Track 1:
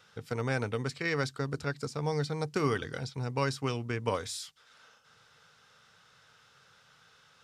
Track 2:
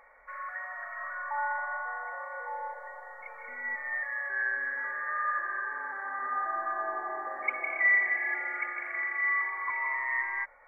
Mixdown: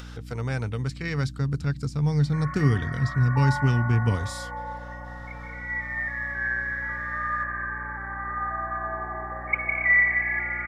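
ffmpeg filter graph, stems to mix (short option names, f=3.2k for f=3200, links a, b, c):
-filter_complex "[0:a]asubboost=boost=11.5:cutoff=190,volume=-0.5dB[a];[1:a]adynamicequalizer=threshold=0.00501:dfrequency=2400:dqfactor=2.8:tfrequency=2400:tqfactor=2.8:attack=5:release=100:ratio=0.375:range=3.5:mode=boostabove:tftype=bell,adelay=2050,volume=1.5dB[b];[a][b]amix=inputs=2:normalize=0,acompressor=mode=upward:threshold=-36dB:ratio=2.5,aeval=exprs='val(0)+0.0112*(sin(2*PI*60*n/s)+sin(2*PI*2*60*n/s)/2+sin(2*PI*3*60*n/s)/3+sin(2*PI*4*60*n/s)/4+sin(2*PI*5*60*n/s)/5)':c=same"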